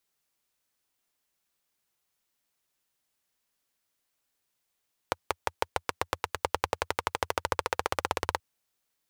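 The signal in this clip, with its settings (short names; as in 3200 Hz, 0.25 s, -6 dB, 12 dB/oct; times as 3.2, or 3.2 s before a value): single-cylinder engine model, changing speed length 3.28 s, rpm 600, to 2100, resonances 86/510/880 Hz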